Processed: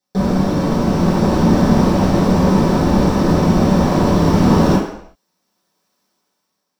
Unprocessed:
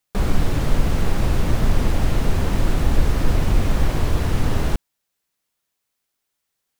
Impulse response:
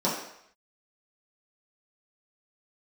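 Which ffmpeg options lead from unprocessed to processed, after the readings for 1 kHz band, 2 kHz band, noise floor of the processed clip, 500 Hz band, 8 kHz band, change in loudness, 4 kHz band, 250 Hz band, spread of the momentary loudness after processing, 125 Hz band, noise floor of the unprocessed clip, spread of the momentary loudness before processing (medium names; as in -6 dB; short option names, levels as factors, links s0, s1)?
+11.0 dB, +4.0 dB, -74 dBFS, +11.5 dB, +3.5 dB, +8.5 dB, +4.5 dB, +14.0 dB, 4 LU, +5.5 dB, -78 dBFS, 2 LU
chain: -filter_complex "[0:a]dynaudnorm=f=300:g=7:m=5.62[s0];[1:a]atrim=start_sample=2205,afade=t=out:st=0.44:d=0.01,atrim=end_sample=19845[s1];[s0][s1]afir=irnorm=-1:irlink=0,volume=0.422"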